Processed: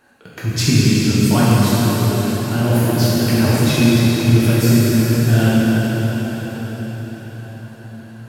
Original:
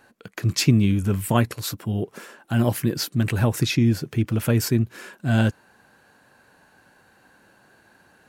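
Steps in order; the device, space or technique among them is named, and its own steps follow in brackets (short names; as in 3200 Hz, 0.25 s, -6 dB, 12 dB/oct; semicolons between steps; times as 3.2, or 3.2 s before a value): cathedral (reverb RT60 5.9 s, pre-delay 3 ms, DRR -10 dB); gain -2 dB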